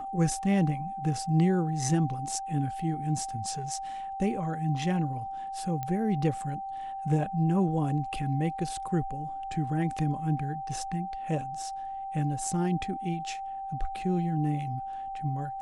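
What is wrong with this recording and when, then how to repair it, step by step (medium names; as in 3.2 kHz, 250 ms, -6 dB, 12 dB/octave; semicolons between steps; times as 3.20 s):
whine 780 Hz -34 dBFS
5.83 s: pop -20 dBFS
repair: de-click; band-stop 780 Hz, Q 30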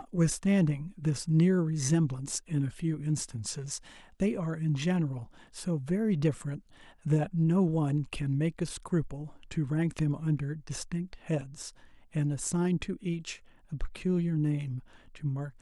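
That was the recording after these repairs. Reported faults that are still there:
nothing left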